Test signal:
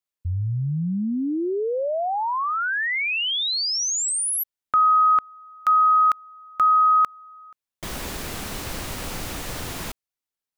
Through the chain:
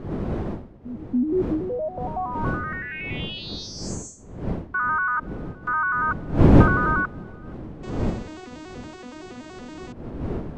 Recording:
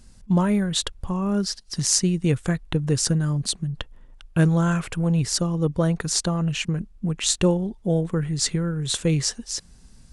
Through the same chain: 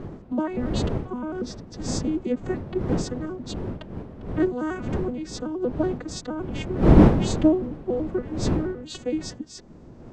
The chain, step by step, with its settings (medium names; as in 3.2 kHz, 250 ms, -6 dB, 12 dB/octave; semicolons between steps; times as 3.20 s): vocoder on a broken chord major triad, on B3, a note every 94 ms; wind noise 280 Hz -21 dBFS; trim -5 dB